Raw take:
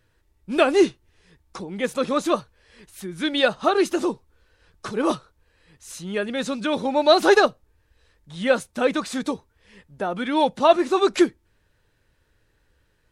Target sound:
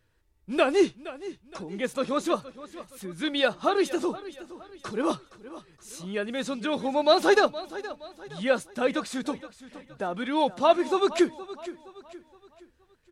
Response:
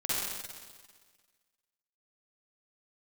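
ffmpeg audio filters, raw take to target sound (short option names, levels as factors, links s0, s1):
-af "aecho=1:1:469|938|1407|1876:0.158|0.065|0.0266|0.0109,volume=0.596"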